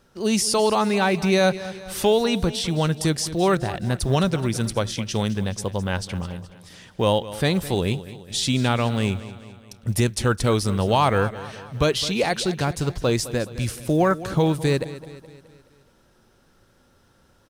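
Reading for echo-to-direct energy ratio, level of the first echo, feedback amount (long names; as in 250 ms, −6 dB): −14.0 dB, −15.5 dB, 52%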